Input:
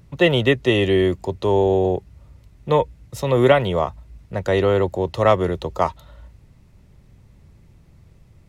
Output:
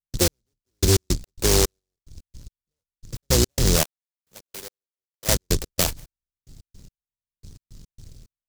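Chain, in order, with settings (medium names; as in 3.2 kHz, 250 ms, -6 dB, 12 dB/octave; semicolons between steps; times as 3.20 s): octave divider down 2 oct, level +3 dB; 3.83–5.29 s: differentiator; peak limiter -11 dBFS, peak gain reduction 10 dB; 1.79–3.21 s: compression 2:1, threshold -33 dBFS, peak gain reduction 9.5 dB; trance gate ".x....x.x.xx...x" 109 bpm -60 dB; delay time shaken by noise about 5.5 kHz, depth 0.31 ms; trim +1.5 dB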